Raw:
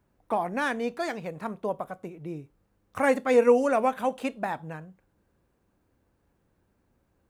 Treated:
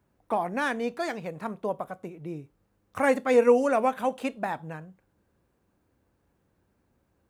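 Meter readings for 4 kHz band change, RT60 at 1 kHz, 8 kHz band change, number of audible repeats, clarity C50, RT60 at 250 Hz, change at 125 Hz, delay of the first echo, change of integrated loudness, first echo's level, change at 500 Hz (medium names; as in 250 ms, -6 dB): 0.0 dB, no reverb, 0.0 dB, no echo, no reverb, no reverb, 0.0 dB, no echo, 0.0 dB, no echo, 0.0 dB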